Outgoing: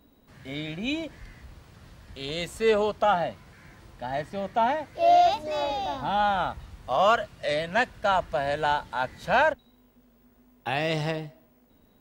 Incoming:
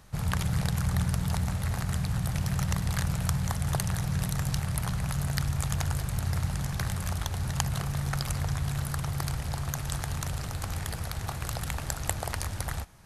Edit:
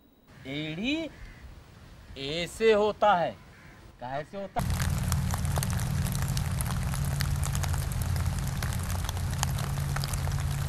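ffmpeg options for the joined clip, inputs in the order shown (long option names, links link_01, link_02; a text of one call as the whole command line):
ffmpeg -i cue0.wav -i cue1.wav -filter_complex "[0:a]asettb=1/sr,asplit=3[link_01][link_02][link_03];[link_01]atrim=end=3.914[link_04];[link_02]atrim=start=3.91:end=4.59,asetpts=PTS-STARTPTS,afade=type=in:duration=0.004:curve=qsin,afade=type=out:start_time=0.676:duration=0.004:curve=qsin,aeval=exprs='(tanh(10*val(0)+0.75)-tanh(0.75))/10':channel_layout=same[link_05];[link_03]atrim=start=4.586[link_06];[link_04][link_05]acrossfade=duration=0.004:curve1=hsin:curve2=qsin[link_07];[link_07][link_06]acrossfade=duration=0.004:curve1=qsin:curve2=hsin,apad=whole_dur=10.68,atrim=end=10.68,atrim=end=4.592[link_08];[1:a]atrim=start=2.758:end=8.85[link_09];[link_08][link_09]acrossfade=duration=0.004:curve1=hsin:curve2=hsin" out.wav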